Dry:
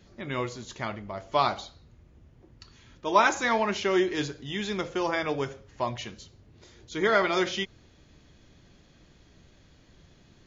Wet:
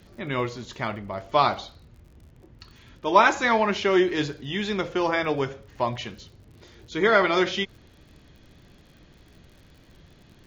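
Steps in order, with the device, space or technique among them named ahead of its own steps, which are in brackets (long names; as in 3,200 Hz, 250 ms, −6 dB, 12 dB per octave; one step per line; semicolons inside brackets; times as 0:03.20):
lo-fi chain (low-pass filter 5,000 Hz 12 dB per octave; tape wow and flutter 23 cents; surface crackle 60 per second −49 dBFS)
level +4 dB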